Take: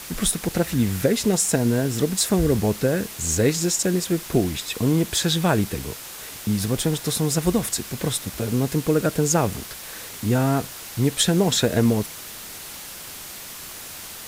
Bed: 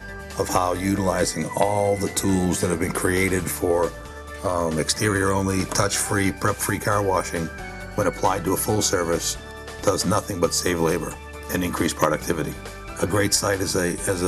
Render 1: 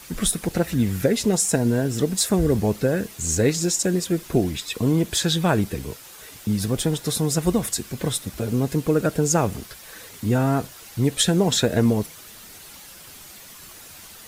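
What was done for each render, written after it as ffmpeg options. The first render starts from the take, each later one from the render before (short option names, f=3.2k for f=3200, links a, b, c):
-af "afftdn=nr=8:nf=-38"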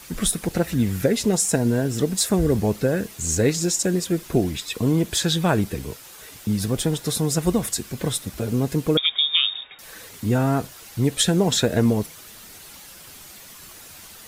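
-filter_complex "[0:a]asettb=1/sr,asplit=3[a][b][c];[a]atrim=end=8.974[d];[b]atrim=start=8.97:end=9.79,asetpts=PTS-STARTPTS,afade=t=in:d=0.004:c=qsin,afade=t=out:st=0.816:d=0.004:c=qsin,lowpass=f=3.2k:t=q:w=0.5098,lowpass=f=3.2k:t=q:w=0.6013,lowpass=f=3.2k:t=q:w=0.9,lowpass=f=3.2k:t=q:w=2.563,afreqshift=-3800[e];[c]atrim=start=9.786[f];[d][e]acrossfade=d=0.004:c1=hsin:c2=qsin[g];[g][f]acrossfade=d=0.004:c1=qsin:c2=hsin"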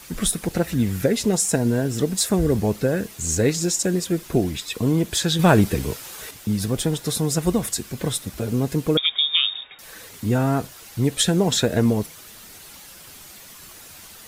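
-filter_complex "[0:a]asettb=1/sr,asplit=3[a][b][c];[a]atrim=end=5.394[d];[b]atrim=start=5.39:end=6.31,asetpts=PTS-STARTPTS,afade=t=in:d=0.004:c=qsin,afade=t=out:st=0.916:d=0.004:c=qsin,acontrast=50[e];[c]atrim=start=6.306[f];[d][e]acrossfade=d=0.004:c1=hsin:c2=qsin[g];[g][f]acrossfade=d=0.004:c1=qsin:c2=hsin"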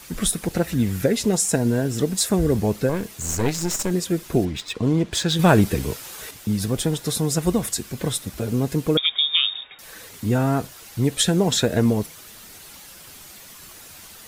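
-filter_complex "[0:a]asettb=1/sr,asplit=3[a][b][c];[a]atrim=end=2.894[d];[b]atrim=start=2.89:end=3.91,asetpts=PTS-STARTPTS,afade=t=in:d=0.004:c=qsin,afade=t=out:st=1.016:d=0.004:c=qsin,aeval=exprs='clip(val(0),-1,0.0335)':c=same[e];[c]atrim=start=3.906[f];[d][e]acrossfade=d=0.004:c1=hsin:c2=qsin[g];[g][f]acrossfade=d=0.004:c1=qsin:c2=hsin,asettb=1/sr,asplit=3[h][i][j];[h]atrim=end=4.454[k];[i]atrim=start=4.45:end=5.36,asetpts=PTS-STARTPTS,afade=t=in:d=0.004:c=qsin,afade=t=out:st=0.906:d=0.004:c=qsin,adynamicsmooth=sensitivity=8:basefreq=3.2k[l];[j]atrim=start=5.356[m];[k][l]acrossfade=d=0.004:c1=hsin:c2=qsin[n];[n][m]acrossfade=d=0.004:c1=qsin:c2=hsin"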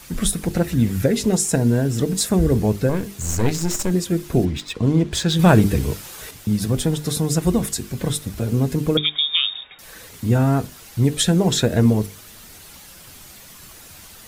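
-af "lowshelf=f=200:g=7.5,bandreject=f=50:t=h:w=6,bandreject=f=100:t=h:w=6,bandreject=f=150:t=h:w=6,bandreject=f=200:t=h:w=6,bandreject=f=250:t=h:w=6,bandreject=f=300:t=h:w=6,bandreject=f=350:t=h:w=6,bandreject=f=400:t=h:w=6,bandreject=f=450:t=h:w=6"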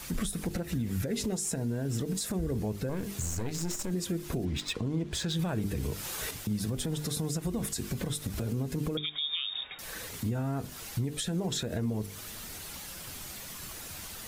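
-af "acompressor=threshold=-25dB:ratio=6,alimiter=limit=-23dB:level=0:latency=1:release=91"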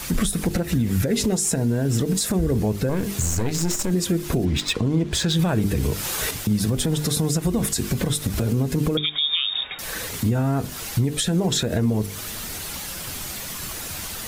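-af "volume=10.5dB"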